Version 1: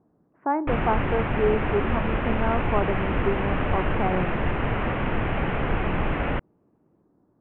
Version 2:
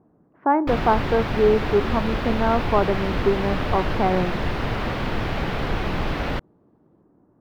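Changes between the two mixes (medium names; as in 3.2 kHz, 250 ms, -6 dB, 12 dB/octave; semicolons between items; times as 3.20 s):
speech +5.5 dB; master: remove steep low-pass 2.9 kHz 48 dB/octave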